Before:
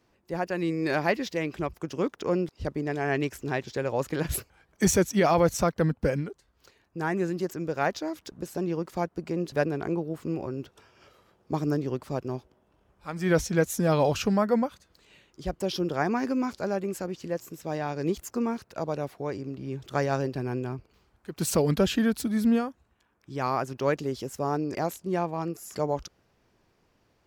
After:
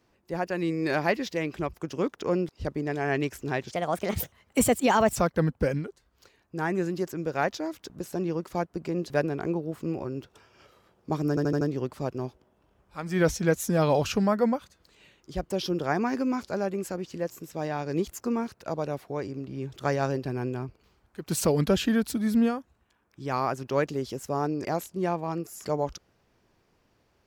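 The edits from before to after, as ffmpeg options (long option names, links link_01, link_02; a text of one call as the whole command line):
ffmpeg -i in.wav -filter_complex "[0:a]asplit=7[link_01][link_02][link_03][link_04][link_05][link_06][link_07];[link_01]atrim=end=3.714[link_08];[link_02]atrim=start=3.71:end=5.58,asetpts=PTS-STARTPTS,asetrate=56889,aresample=44100[link_09];[link_03]atrim=start=5.576:end=11.792[link_10];[link_04]atrim=start=11.708:end=11.792[link_11];[link_05]atrim=start=11.708:end=11.792[link_12];[link_06]atrim=start=11.708:end=11.792[link_13];[link_07]atrim=start=11.708[link_14];[link_08][link_09]acrossfade=duration=0.004:curve1=hsin:curve2=hsin[link_15];[link_15][link_10]acrossfade=duration=0.004:curve1=hsin:curve2=hsin[link_16];[link_16][link_11]acrossfade=duration=0.004:curve1=hsin:curve2=hsin[link_17];[link_17][link_12]acrossfade=duration=0.004:curve1=hsin:curve2=hsin[link_18];[link_18][link_13]acrossfade=duration=0.004:curve1=hsin:curve2=hsin[link_19];[link_19][link_14]acrossfade=duration=0.004:curve1=hsin:curve2=hsin" out.wav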